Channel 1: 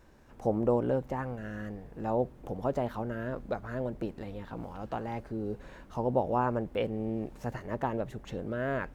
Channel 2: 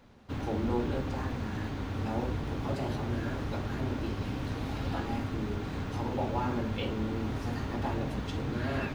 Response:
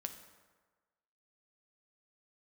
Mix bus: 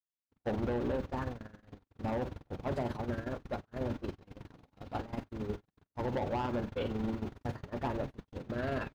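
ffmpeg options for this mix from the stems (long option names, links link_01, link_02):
-filter_complex "[0:a]lowpass=frequency=1900:width=0.5412,lowpass=frequency=1900:width=1.3066,agate=range=-33dB:threshold=-42dB:ratio=3:detection=peak,asoftclip=type=tanh:threshold=-28dB,volume=-1dB,asplit=2[link_01][link_02];[link_02]volume=-8.5dB[link_03];[1:a]tremolo=f=22:d=0.667,volume=-1.5dB,asplit=2[link_04][link_05];[link_05]volume=-16.5dB[link_06];[2:a]atrim=start_sample=2205[link_07];[link_03][link_06]amix=inputs=2:normalize=0[link_08];[link_08][link_07]afir=irnorm=-1:irlink=0[link_09];[link_01][link_04][link_09]amix=inputs=3:normalize=0,agate=range=-58dB:threshold=-32dB:ratio=16:detection=peak,alimiter=level_in=1.5dB:limit=-24dB:level=0:latency=1:release=77,volume=-1.5dB"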